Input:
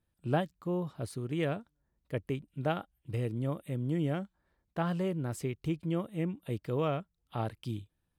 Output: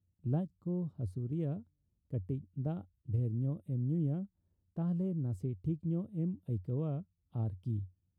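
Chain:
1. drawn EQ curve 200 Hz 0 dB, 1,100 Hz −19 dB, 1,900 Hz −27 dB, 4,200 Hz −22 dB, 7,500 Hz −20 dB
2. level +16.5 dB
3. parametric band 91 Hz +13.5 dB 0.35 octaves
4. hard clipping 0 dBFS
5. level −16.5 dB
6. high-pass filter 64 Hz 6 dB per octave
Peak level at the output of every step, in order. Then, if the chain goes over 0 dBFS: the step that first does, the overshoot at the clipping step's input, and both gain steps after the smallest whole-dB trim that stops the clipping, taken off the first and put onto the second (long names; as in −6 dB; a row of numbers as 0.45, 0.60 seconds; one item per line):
−21.5, −5.0, −4.0, −4.0, −20.5, −21.0 dBFS
no step passes full scale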